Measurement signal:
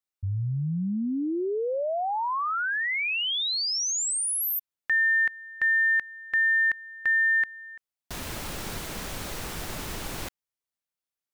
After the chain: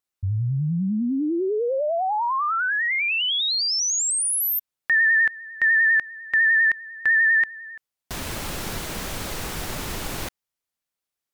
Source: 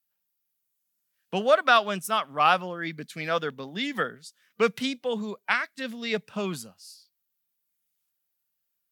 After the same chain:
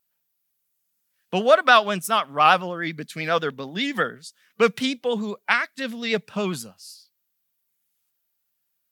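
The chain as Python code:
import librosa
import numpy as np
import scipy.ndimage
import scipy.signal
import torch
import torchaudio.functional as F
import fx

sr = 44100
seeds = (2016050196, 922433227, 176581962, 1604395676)

y = fx.vibrato(x, sr, rate_hz=10.0, depth_cents=46.0)
y = F.gain(torch.from_numpy(y), 4.5).numpy()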